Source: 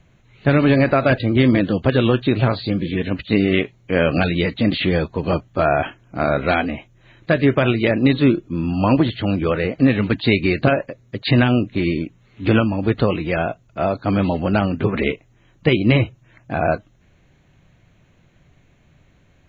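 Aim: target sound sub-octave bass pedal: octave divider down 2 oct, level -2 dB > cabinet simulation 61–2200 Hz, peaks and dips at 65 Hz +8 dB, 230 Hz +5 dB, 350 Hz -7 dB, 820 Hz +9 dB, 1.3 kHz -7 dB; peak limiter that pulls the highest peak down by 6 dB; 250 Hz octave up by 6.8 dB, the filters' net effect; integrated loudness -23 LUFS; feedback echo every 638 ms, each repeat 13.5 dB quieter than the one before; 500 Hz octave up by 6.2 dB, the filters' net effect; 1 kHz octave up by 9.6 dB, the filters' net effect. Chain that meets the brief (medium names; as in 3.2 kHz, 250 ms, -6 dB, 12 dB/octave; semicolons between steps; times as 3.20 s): peaking EQ 250 Hz +5 dB; peaking EQ 500 Hz +5 dB; peaking EQ 1 kHz +6 dB; peak limiter -3 dBFS; feedback delay 638 ms, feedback 21%, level -13.5 dB; octave divider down 2 oct, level -2 dB; cabinet simulation 61–2200 Hz, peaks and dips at 65 Hz +8 dB, 230 Hz +5 dB, 350 Hz -7 dB, 820 Hz +9 dB, 1.3 kHz -7 dB; trim -9 dB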